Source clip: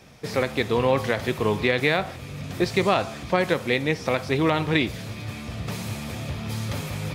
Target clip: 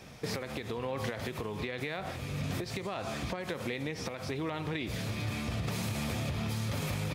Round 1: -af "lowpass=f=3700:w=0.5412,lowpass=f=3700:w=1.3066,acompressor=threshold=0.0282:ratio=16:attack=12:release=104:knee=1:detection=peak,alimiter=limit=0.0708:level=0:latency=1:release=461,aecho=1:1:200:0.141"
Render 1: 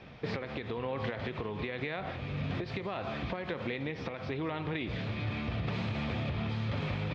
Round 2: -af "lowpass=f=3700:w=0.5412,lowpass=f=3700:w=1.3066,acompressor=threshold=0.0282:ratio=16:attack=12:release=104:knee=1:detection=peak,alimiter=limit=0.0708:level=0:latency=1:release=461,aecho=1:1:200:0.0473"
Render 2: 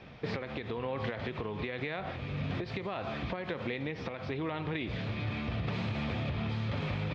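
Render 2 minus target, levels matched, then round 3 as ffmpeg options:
4 kHz band -2.5 dB
-af "acompressor=threshold=0.0282:ratio=16:attack=12:release=104:knee=1:detection=peak,alimiter=limit=0.0708:level=0:latency=1:release=461,aecho=1:1:200:0.0473"

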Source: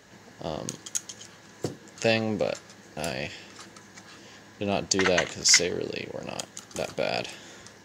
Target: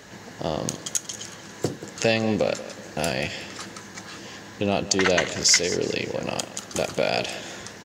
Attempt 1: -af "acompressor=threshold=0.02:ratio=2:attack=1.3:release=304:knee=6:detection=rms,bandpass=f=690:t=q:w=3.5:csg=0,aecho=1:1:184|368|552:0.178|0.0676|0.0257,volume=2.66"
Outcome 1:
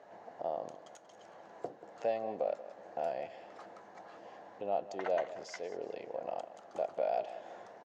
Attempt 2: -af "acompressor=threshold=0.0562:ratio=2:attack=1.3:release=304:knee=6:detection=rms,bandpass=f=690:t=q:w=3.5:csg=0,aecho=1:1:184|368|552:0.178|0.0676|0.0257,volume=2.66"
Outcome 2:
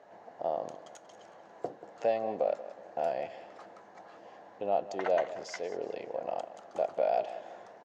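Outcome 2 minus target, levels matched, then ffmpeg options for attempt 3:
500 Hz band +4.5 dB
-af "acompressor=threshold=0.0562:ratio=2:attack=1.3:release=304:knee=6:detection=rms,aecho=1:1:184|368|552:0.178|0.0676|0.0257,volume=2.66"

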